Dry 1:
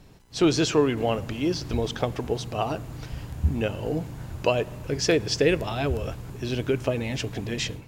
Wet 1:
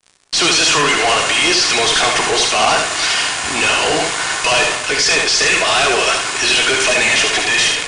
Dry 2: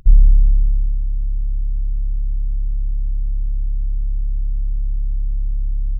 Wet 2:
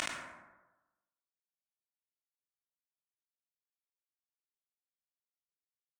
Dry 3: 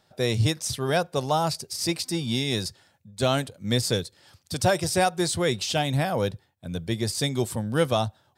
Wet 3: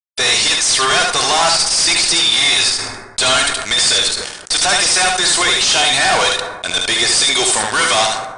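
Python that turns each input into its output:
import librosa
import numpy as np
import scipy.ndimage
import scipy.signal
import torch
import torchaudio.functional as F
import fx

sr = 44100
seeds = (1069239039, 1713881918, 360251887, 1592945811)

y = scipy.signal.sosfilt(scipy.signal.butter(2, 1400.0, 'highpass', fs=sr, output='sos'), x)
y = y + 0.39 * np.pad(y, (int(2.8 * sr / 1000.0), 0))[:len(y)]
y = fx.rider(y, sr, range_db=3, speed_s=0.5)
y = fx.fuzz(y, sr, gain_db=50.0, gate_db=-53.0)
y = fx.brickwall_lowpass(y, sr, high_hz=10000.0)
y = y + 10.0 ** (-4.5 / 20.0) * np.pad(y, (int(74 * sr / 1000.0), 0))[:len(y)]
y = fx.rev_plate(y, sr, seeds[0], rt60_s=1.2, hf_ratio=0.4, predelay_ms=0, drr_db=13.0)
y = fx.sustainer(y, sr, db_per_s=57.0)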